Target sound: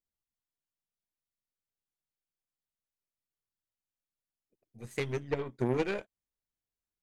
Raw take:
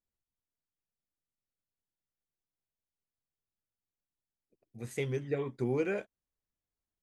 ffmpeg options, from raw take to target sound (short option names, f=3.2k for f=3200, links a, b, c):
-af "aeval=exprs='0.106*(cos(1*acos(clip(val(0)/0.106,-1,1)))-cos(1*PI/2))+0.0422*(cos(2*acos(clip(val(0)/0.106,-1,1)))-cos(2*PI/2))+0.00596*(cos(7*acos(clip(val(0)/0.106,-1,1)))-cos(7*PI/2))+0.00944*(cos(8*acos(clip(val(0)/0.106,-1,1)))-cos(8*PI/2))':c=same"